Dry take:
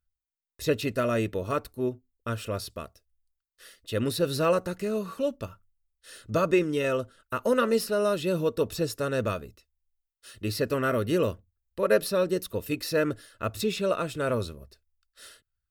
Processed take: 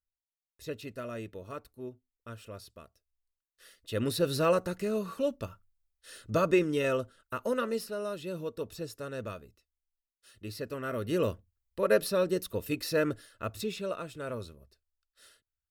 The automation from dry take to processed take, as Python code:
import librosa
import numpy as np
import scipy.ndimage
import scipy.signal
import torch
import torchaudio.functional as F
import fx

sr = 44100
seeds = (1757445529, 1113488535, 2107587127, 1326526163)

y = fx.gain(x, sr, db=fx.line((2.81, -13.0), (4.16, -2.0), (6.91, -2.0), (8.04, -10.5), (10.81, -10.5), (11.26, -2.5), (13.08, -2.5), (14.09, -10.0)))